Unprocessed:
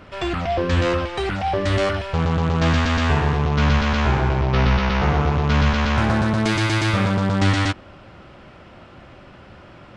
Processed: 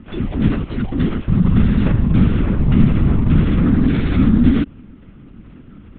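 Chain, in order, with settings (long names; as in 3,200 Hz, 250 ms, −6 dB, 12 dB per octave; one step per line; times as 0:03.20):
time stretch by overlap-add 0.6×, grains 20 ms
low shelf with overshoot 360 Hz +12 dB, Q 3
linear-prediction vocoder at 8 kHz whisper
level −6.5 dB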